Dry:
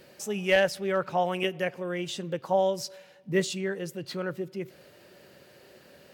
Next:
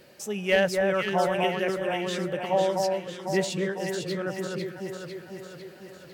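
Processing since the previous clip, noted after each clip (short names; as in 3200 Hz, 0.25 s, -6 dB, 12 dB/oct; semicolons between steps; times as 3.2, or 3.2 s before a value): echo with dull and thin repeats by turns 0.25 s, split 1700 Hz, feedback 75%, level -2.5 dB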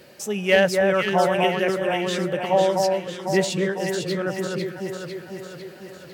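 HPF 49 Hz; gain +5 dB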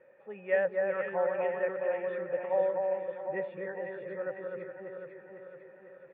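vocal tract filter e; band shelf 1100 Hz +13 dB 1.1 oct; echo 0.408 s -10.5 dB; gain -4 dB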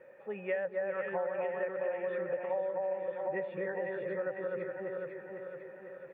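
compressor 6:1, threshold -36 dBFS, peak gain reduction 13 dB; gain +4.5 dB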